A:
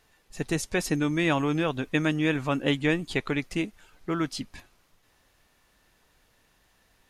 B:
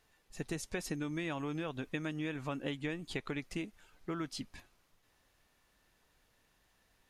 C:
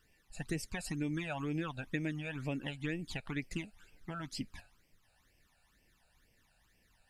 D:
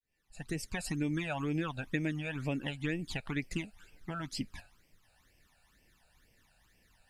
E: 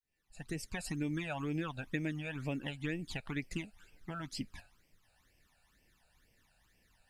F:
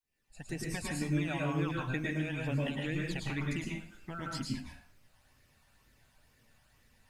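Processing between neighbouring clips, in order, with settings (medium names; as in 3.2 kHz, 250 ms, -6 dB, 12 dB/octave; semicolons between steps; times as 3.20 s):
compression 6:1, threshold -27 dBFS, peak gain reduction 8.5 dB; trim -7 dB
phase shifter stages 12, 2.1 Hz, lowest notch 330–1300 Hz; trim +3 dB
fade-in on the opening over 0.76 s; trim +3 dB
short-mantissa float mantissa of 6-bit; trim -3 dB
reverberation RT60 0.50 s, pre-delay 97 ms, DRR -2 dB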